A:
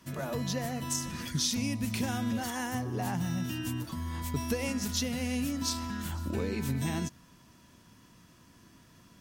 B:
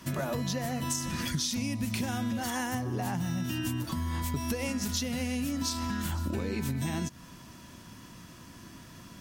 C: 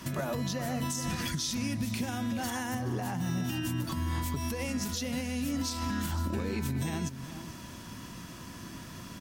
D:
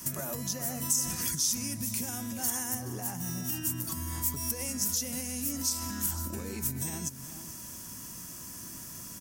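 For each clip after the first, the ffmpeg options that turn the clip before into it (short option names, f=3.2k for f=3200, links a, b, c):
-af "bandreject=f=450:w=15,acompressor=threshold=-38dB:ratio=6,volume=9dB"
-filter_complex "[0:a]alimiter=level_in=4dB:limit=-24dB:level=0:latency=1:release=283,volume=-4dB,asplit=2[a][b];[b]adelay=425.7,volume=-11dB,highshelf=f=4k:g=-9.58[c];[a][c]amix=inputs=2:normalize=0,volume=4.5dB"
-af "aexciter=amount=7.4:drive=3.9:freq=5.5k,volume=-5.5dB"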